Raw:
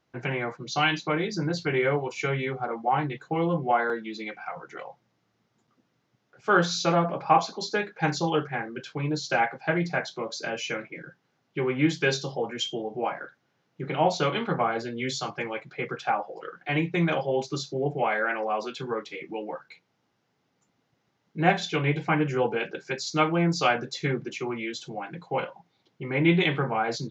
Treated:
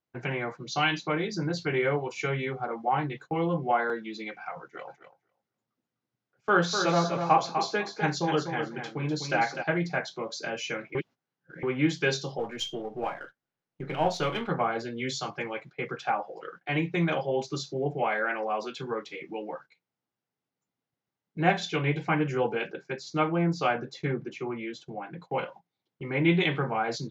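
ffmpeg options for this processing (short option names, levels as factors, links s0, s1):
-filter_complex "[0:a]asplit=3[s0][s1][s2];[s0]afade=t=out:st=4.87:d=0.02[s3];[s1]aecho=1:1:250|500|750:0.447|0.0849|0.0161,afade=t=in:st=4.87:d=0.02,afade=t=out:st=9.62:d=0.02[s4];[s2]afade=t=in:st=9.62:d=0.02[s5];[s3][s4][s5]amix=inputs=3:normalize=0,asplit=3[s6][s7][s8];[s6]afade=t=out:st=12.38:d=0.02[s9];[s7]aeval=exprs='if(lt(val(0),0),0.708*val(0),val(0))':c=same,afade=t=in:st=12.38:d=0.02,afade=t=out:st=14.48:d=0.02[s10];[s8]afade=t=in:st=14.48:d=0.02[s11];[s9][s10][s11]amix=inputs=3:normalize=0,asettb=1/sr,asplit=3[s12][s13][s14];[s12]atrim=end=22.724[s15];[s13]atrim=start=22.72:end=25.22,asetpts=PTS-STARTPTS,afade=t=in:d=0.004:c=qsin,afade=t=out:st=2.496:d=0.004:c=qsin,highshelf=f=3100:g=-11.5[s16];[s14]atrim=start=25.216[s17];[s15][s16]acrossfade=d=0.004:c1=hsin:c2=qsin[s18];[s18][s17]acrossfade=d=0.004:c1=qsin:c2=hsin,asplit=3[s19][s20][s21];[s19]atrim=end=10.952[s22];[s20]atrim=start=10.948:end=11.632,asetpts=PTS-STARTPTS,areverse[s23];[s21]atrim=start=11.628[s24];[s22][s23]acrossfade=d=0.004:c1=hsin:c2=hsin[s25];[s25][s24]acrossfade=d=0.004:c1=hsin:c2=hsin,agate=range=0.178:threshold=0.00631:ratio=16:detection=peak,volume=0.794"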